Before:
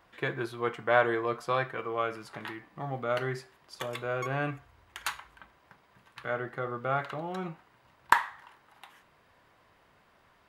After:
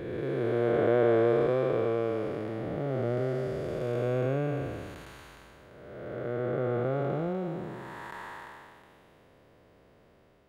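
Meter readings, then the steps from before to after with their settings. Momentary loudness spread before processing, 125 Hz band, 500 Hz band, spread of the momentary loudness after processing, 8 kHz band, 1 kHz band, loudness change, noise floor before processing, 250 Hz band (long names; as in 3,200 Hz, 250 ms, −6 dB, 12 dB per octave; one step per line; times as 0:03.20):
16 LU, +7.0 dB, +6.0 dB, 18 LU, below −10 dB, −6.5 dB, +2.5 dB, −64 dBFS, +7.5 dB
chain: spectrum smeared in time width 664 ms
low shelf with overshoot 700 Hz +9.5 dB, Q 1.5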